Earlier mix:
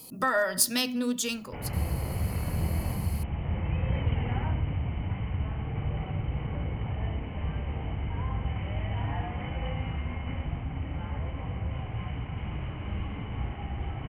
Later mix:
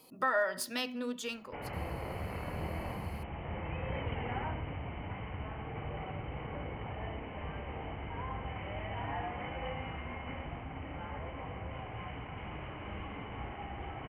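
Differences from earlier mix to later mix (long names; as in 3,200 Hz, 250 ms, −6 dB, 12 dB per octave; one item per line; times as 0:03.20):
speech −3.5 dB
master: add bass and treble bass −12 dB, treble −13 dB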